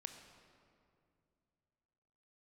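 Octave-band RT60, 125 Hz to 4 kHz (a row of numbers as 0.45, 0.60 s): 3.2, 2.9, 2.7, 2.3, 1.9, 1.4 s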